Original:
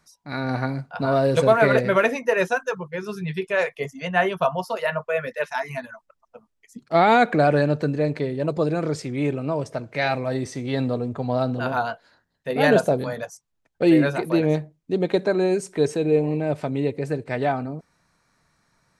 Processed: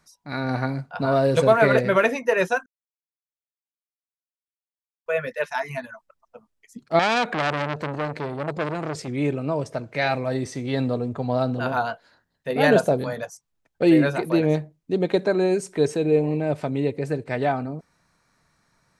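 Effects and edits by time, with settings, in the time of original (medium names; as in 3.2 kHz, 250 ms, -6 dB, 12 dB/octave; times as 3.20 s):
2.66–5.06 s: mute
6.99–9.08 s: transformer saturation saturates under 2.8 kHz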